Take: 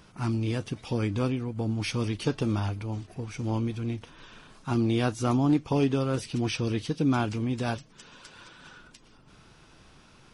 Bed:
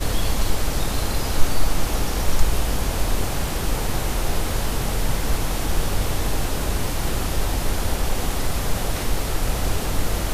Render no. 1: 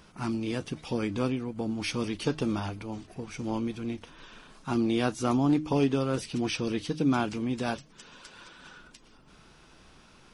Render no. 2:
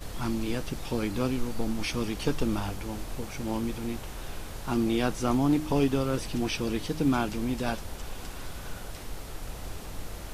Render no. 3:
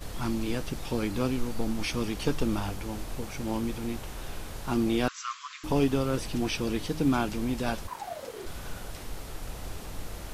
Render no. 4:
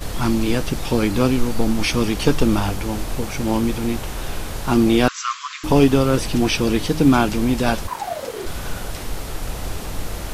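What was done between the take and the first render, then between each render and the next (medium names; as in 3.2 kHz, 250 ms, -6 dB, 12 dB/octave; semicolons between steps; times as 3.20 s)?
peaking EQ 110 Hz -12 dB 0.32 oct; de-hum 153.2 Hz, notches 2
add bed -16 dB
5.08–5.64 s: brick-wall FIR band-pass 1–7.8 kHz; 7.87–8.45 s: ring modulator 1.1 kHz -> 360 Hz
trim +11 dB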